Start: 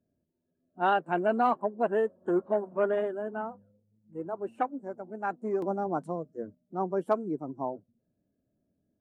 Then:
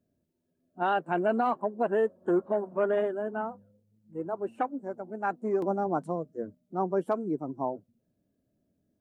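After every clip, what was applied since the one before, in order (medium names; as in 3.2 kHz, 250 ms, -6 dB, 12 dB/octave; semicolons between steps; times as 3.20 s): peak limiter -19.5 dBFS, peak gain reduction 6 dB; trim +2 dB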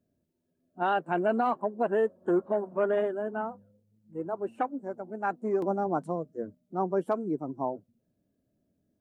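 no audible change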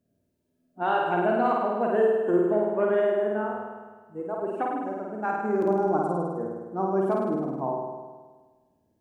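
flutter echo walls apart 8.9 m, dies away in 1.4 s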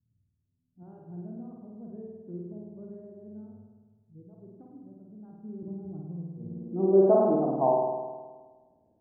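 low-pass sweep 110 Hz -> 750 Hz, 6.37–7.21 s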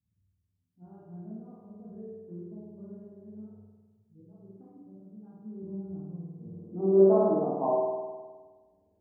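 reverberation, pre-delay 12 ms, DRR -5 dB; trim -7.5 dB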